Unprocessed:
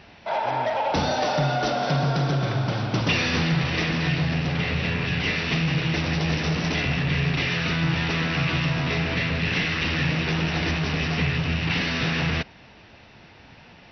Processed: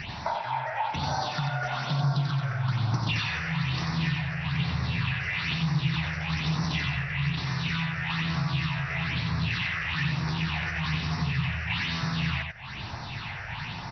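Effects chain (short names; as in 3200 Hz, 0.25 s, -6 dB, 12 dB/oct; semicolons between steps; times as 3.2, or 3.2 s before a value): graphic EQ 125/250/500/1000/2000/4000 Hz +9/-4/-10/+12/+4/+7 dB; compressor, threshold -36 dBFS, peak gain reduction 21.5 dB; phaser stages 6, 1.1 Hz, lowest notch 240–3100 Hz; on a send: echo 91 ms -5 dB; on the sum: gain +8.5 dB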